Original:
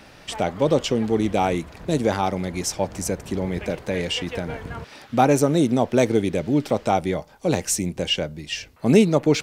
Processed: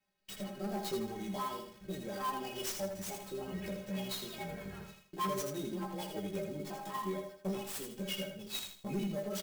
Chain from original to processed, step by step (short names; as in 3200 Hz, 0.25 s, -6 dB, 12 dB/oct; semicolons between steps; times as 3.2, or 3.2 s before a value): trilling pitch shifter +5.5 st, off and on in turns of 0.44 s; gate -40 dBFS, range -25 dB; high shelf 4500 Hz +6.5 dB; compressor 2:1, threshold -27 dBFS, peak gain reduction 10 dB; metallic resonator 190 Hz, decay 0.21 s, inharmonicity 0.008; chorus voices 2, 0.53 Hz, delay 17 ms, depth 2.7 ms; soft clip -34 dBFS, distortion -12 dB; rotary speaker horn 0.7 Hz, later 6.3 Hz, at 2.77; on a send: feedback echo 80 ms, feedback 33%, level -6 dB; on the sum: clock jitter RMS 0.024 ms; gain +5.5 dB